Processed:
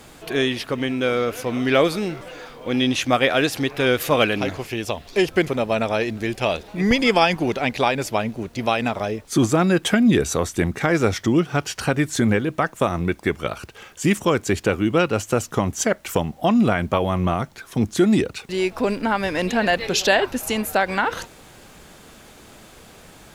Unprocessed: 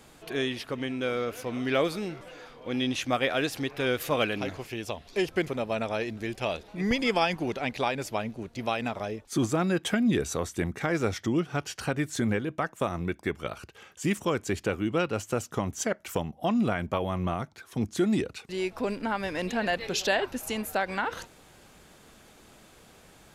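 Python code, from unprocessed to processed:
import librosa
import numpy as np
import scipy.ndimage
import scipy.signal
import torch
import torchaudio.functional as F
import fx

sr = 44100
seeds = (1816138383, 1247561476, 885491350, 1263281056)

y = fx.dmg_noise_colour(x, sr, seeds[0], colour='pink', level_db=-66.0)
y = y * 10.0 ** (8.5 / 20.0)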